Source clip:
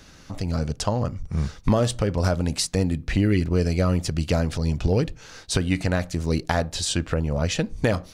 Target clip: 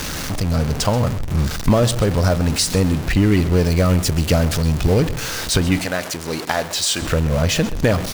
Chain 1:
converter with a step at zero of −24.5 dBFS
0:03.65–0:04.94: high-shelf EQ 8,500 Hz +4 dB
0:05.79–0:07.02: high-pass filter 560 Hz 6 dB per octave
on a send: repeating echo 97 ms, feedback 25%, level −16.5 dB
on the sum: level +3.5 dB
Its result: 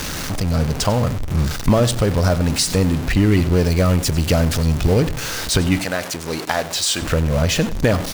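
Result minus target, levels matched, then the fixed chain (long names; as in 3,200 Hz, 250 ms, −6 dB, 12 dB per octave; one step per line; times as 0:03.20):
echo 34 ms early
converter with a step at zero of −24.5 dBFS
0:03.65–0:04.94: high-shelf EQ 8,500 Hz +4 dB
0:05.79–0:07.02: high-pass filter 560 Hz 6 dB per octave
on a send: repeating echo 131 ms, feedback 25%, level −16.5 dB
on the sum: level +3.5 dB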